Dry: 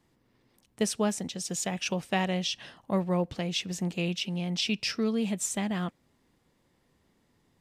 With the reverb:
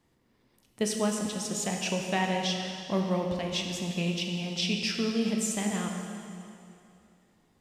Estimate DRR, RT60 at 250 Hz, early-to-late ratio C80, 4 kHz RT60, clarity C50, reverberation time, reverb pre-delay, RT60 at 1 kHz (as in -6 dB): 1.5 dB, 2.7 s, 4.0 dB, 2.4 s, 3.0 dB, 2.6 s, 6 ms, 2.6 s